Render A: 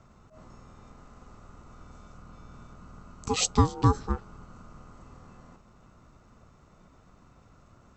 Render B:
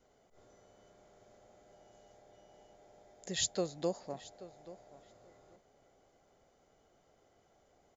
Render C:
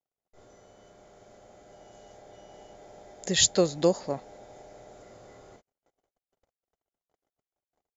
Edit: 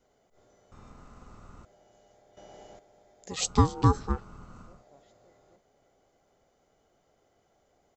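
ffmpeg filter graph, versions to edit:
-filter_complex "[0:a]asplit=2[a][b];[1:a]asplit=4[c][d][e][f];[c]atrim=end=0.722[g];[a]atrim=start=0.718:end=1.652[h];[d]atrim=start=1.648:end=2.372[i];[2:a]atrim=start=2.368:end=2.792[j];[e]atrim=start=2.788:end=3.52[k];[b]atrim=start=3.28:end=4.86[l];[f]atrim=start=4.62[m];[g][h]acrossfade=d=0.004:c1=hsin:c2=hsin[n];[n][i]acrossfade=d=0.004:c1=hsin:c2=hsin[o];[o][j]acrossfade=d=0.004:c1=hsin:c2=hsin[p];[p][k]acrossfade=d=0.004:c1=hsin:c2=hsin[q];[q][l]acrossfade=d=0.24:c1=tri:c2=tri[r];[r][m]acrossfade=d=0.24:c1=tri:c2=tri"

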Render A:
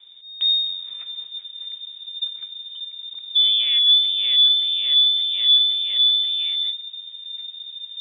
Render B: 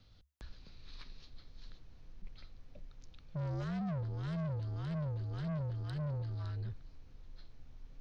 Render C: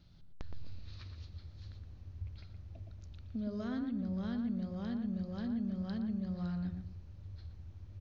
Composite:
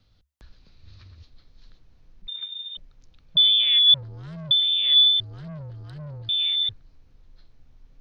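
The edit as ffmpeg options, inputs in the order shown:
-filter_complex "[0:a]asplit=4[a][b][c][d];[1:a]asplit=6[e][f][g][h][i][j];[e]atrim=end=0.832[k];[2:a]atrim=start=0.828:end=1.232[l];[f]atrim=start=1.228:end=2.282[m];[a]atrim=start=2.278:end=2.772[n];[g]atrim=start=2.768:end=3.372[o];[b]atrim=start=3.368:end=3.942[p];[h]atrim=start=3.938:end=4.512[q];[c]atrim=start=4.508:end=5.202[r];[i]atrim=start=5.198:end=6.292[s];[d]atrim=start=6.288:end=6.692[t];[j]atrim=start=6.688[u];[k][l]acrossfade=d=0.004:c1=hsin:c2=hsin[v];[v][m]acrossfade=d=0.004:c1=hsin:c2=hsin[w];[w][n]acrossfade=d=0.004:c1=hsin:c2=hsin[x];[x][o]acrossfade=d=0.004:c1=hsin:c2=hsin[y];[y][p]acrossfade=d=0.004:c1=hsin:c2=hsin[z];[z][q]acrossfade=d=0.004:c1=hsin:c2=hsin[aa];[aa][r]acrossfade=d=0.004:c1=hsin:c2=hsin[ab];[ab][s]acrossfade=d=0.004:c1=hsin:c2=hsin[ac];[ac][t]acrossfade=d=0.004:c1=hsin:c2=hsin[ad];[ad][u]acrossfade=d=0.004:c1=hsin:c2=hsin"

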